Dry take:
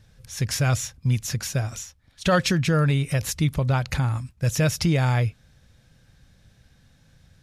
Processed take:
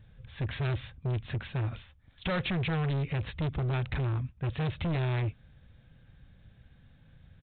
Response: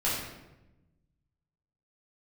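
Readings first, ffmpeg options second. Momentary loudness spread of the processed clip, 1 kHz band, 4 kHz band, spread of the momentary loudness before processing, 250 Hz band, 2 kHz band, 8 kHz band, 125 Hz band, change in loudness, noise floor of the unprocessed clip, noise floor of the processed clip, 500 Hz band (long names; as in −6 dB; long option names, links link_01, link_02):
7 LU, −10.0 dB, −10.5 dB, 8 LU, −9.5 dB, −9.0 dB, below −40 dB, −8.0 dB, −9.0 dB, −59 dBFS, −60 dBFS, −9.5 dB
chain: -af "lowshelf=frequency=260:gain=4.5,aresample=8000,asoftclip=type=hard:threshold=-24dB,aresample=44100,volume=-4dB"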